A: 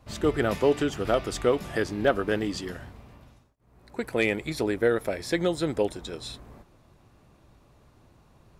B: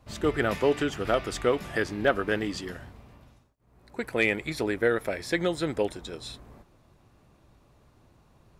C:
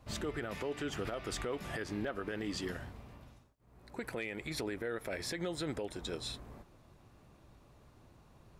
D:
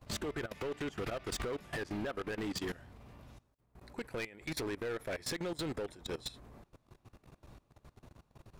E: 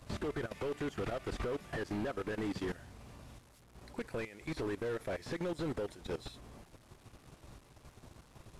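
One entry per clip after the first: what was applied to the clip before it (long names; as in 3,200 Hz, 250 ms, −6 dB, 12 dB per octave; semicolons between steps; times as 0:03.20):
dynamic equaliser 1,900 Hz, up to +5 dB, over −42 dBFS, Q 0.95; level −2 dB
downward compressor 10 to 1, threshold −29 dBFS, peak gain reduction 12.5 dB; brickwall limiter −27 dBFS, peak gain reduction 9.5 dB; level −1 dB
output level in coarse steps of 20 dB; hard clipping −39.5 dBFS, distortion −10 dB; level +6 dB
linear delta modulator 64 kbit/s, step −57 dBFS; level +1.5 dB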